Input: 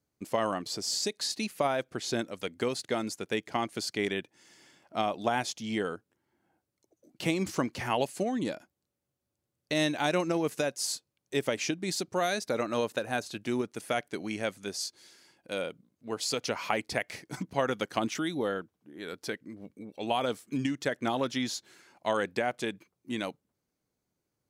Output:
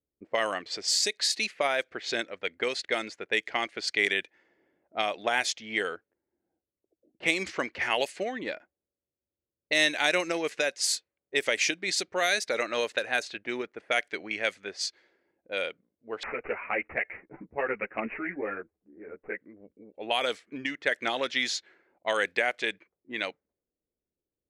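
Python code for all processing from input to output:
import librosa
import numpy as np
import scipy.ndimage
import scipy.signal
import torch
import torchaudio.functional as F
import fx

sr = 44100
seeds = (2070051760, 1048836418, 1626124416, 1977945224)

y = fx.chain(x, sr, fx.tilt_eq(slope=-2.0),
    fx.resample_bad(factor=8, down='none', up='filtered'),
    fx.ensemble(), at=(16.23, 19.41))
y = fx.graphic_eq_10(y, sr, hz=(125, 250, 500, 1000, 2000, 4000, 8000), db=(-10, -5, 3, -4, 11, 4, 5))
y = fx.env_lowpass(y, sr, base_hz=370.0, full_db=-23.0)
y = fx.peak_eq(y, sr, hz=130.0, db=-4.5, octaves=1.7)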